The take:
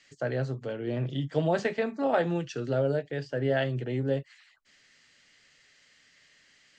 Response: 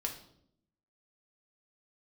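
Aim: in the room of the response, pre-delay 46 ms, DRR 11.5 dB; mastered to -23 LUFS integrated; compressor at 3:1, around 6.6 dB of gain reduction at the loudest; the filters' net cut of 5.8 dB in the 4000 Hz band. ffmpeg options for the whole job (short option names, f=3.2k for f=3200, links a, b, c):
-filter_complex "[0:a]equalizer=f=4k:t=o:g=-8.5,acompressor=threshold=-30dB:ratio=3,asplit=2[a][b];[1:a]atrim=start_sample=2205,adelay=46[c];[b][c]afir=irnorm=-1:irlink=0,volume=-13dB[d];[a][d]amix=inputs=2:normalize=0,volume=11dB"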